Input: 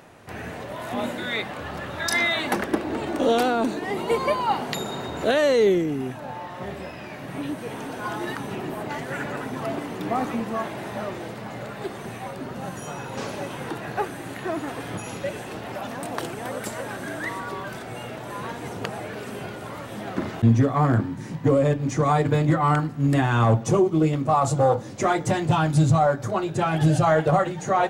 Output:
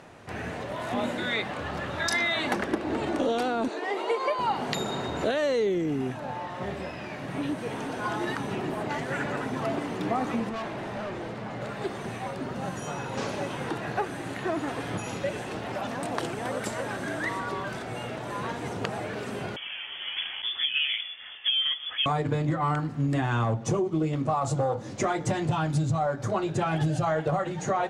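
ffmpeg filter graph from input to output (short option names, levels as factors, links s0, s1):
-filter_complex "[0:a]asettb=1/sr,asplit=3[s0][s1][s2];[s0]atrim=end=3.684[s3];[s1]atrim=start=3.68:end=4.39,asetpts=PTS-STARTPTS,afade=t=in:d=0.004:c=qsin,afade=t=out:st=0.706:d=0.004:c=qsin,highpass=f=370:w=0.5412,highpass=f=370:w=1.3066,highshelf=f=9600:g=-11.5[s4];[s2]atrim=start=4.386[s5];[s3][s4]acrossfade=d=0.004:c1=hsin:c2=qsin[s6];[s6][s5]acrossfade=d=0.004:c1=qsin:c2=hsin,asettb=1/sr,asplit=3[s7][s8][s9];[s7]atrim=end=10.494[s10];[s8]atrim=start=10.49:end=11.62,asetpts=PTS-STARTPTS,afade=t=in:d=0.004:c=qsin,afade=t=out:st=1.126:d=0.004:c=qsin,highshelf=f=4100:g=-7.5,asoftclip=type=hard:threshold=0.0282[s11];[s9]atrim=start=11.616[s12];[s10][s11]acrossfade=d=0.004:c1=hsin:c2=qsin[s13];[s13][s12]acrossfade=d=0.004:c1=qsin:c2=hsin,asettb=1/sr,asplit=3[s14][s15][s16];[s14]atrim=end=19.564[s17];[s15]atrim=start=19.56:end=22.06,asetpts=PTS-STARTPTS,afade=t=in:d=0.004:c=qsin,afade=t=out:st=2.496:d=0.004:c=qsin,highpass=f=350:w=0.5412,highpass=f=350:w=1.3066,lowpass=f=3100:t=q:w=0.5098,lowpass=f=3100:t=q:w=0.6013,lowpass=f=3100:t=q:w=0.9,lowpass=f=3100:t=q:w=2.563,afreqshift=-3700[s18];[s16]atrim=start=22.056[s19];[s17][s18]acrossfade=d=0.004:c1=hsin:c2=qsin[s20];[s20][s19]acrossfade=d=0.004:c1=qsin:c2=hsin,lowpass=8700,acompressor=threshold=0.0708:ratio=6"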